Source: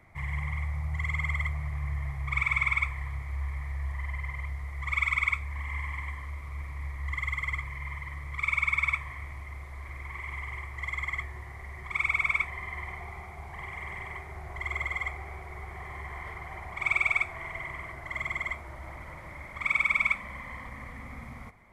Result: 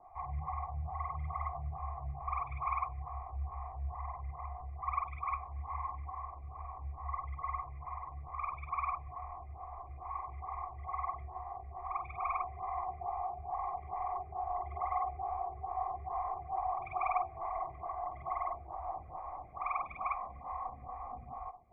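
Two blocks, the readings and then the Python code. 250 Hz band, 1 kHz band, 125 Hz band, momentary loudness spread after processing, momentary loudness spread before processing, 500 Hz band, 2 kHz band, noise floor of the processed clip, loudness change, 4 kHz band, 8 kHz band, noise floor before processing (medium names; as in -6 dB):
under -10 dB, +5.0 dB, -9.0 dB, 9 LU, 17 LU, +3.5 dB, -23.5 dB, -49 dBFS, -8.5 dB, under -30 dB, no reading, -44 dBFS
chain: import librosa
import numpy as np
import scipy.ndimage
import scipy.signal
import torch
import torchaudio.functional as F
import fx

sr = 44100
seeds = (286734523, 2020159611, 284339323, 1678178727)

y = fx.formant_cascade(x, sr, vowel='a')
y = fx.low_shelf(y, sr, hz=200.0, db=10.5)
y = y + 0.38 * np.pad(y, (int(2.5 * sr / 1000.0), 0))[:len(y)]
y = fx.stagger_phaser(y, sr, hz=2.3)
y = y * 10.0 ** (14.5 / 20.0)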